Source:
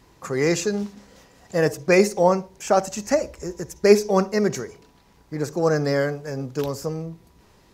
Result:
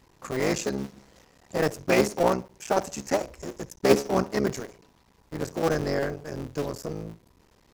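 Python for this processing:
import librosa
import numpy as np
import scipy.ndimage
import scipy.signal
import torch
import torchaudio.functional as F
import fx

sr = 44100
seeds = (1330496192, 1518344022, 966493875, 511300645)

y = fx.cycle_switch(x, sr, every=3, mode='muted')
y = y * librosa.db_to_amplitude(-3.5)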